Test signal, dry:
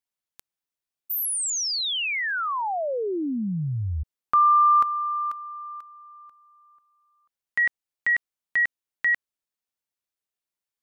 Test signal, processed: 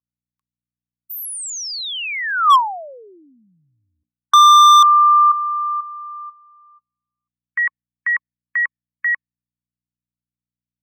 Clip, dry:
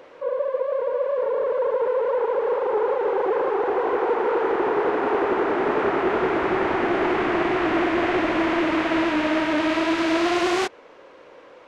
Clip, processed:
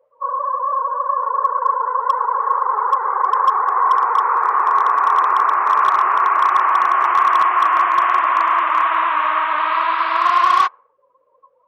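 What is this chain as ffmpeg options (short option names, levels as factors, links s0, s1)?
-af "aeval=exprs='val(0)+0.00501*(sin(2*PI*60*n/s)+sin(2*PI*2*60*n/s)/2+sin(2*PI*3*60*n/s)/3+sin(2*PI*4*60*n/s)/4+sin(2*PI*5*60*n/s)/5)':c=same,highshelf=f=7500:g=-2.5,afftdn=nr=36:nf=-37,highpass=f=1100:t=q:w=13,volume=2.24,asoftclip=hard,volume=0.447"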